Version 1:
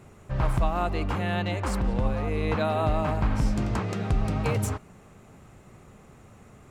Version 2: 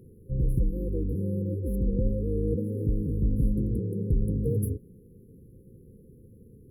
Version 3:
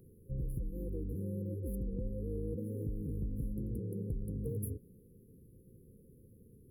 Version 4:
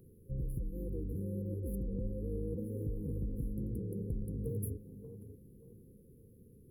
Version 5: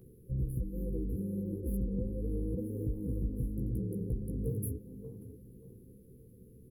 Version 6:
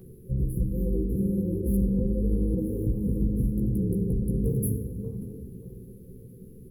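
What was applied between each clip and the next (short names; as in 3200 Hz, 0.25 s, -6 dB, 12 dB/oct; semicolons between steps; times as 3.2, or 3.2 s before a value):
FFT band-reject 530–10000 Hz
vibrato 0.86 Hz 21 cents; high shelf 7500 Hz +10 dB; compressor, threshold -26 dBFS, peak gain reduction 7 dB; gain -7.5 dB
tape echo 0.581 s, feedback 37%, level -9 dB, low-pass 1200 Hz
doubler 16 ms -4 dB; gain +2 dB
shoebox room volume 3000 m³, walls mixed, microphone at 1.1 m; gain +7.5 dB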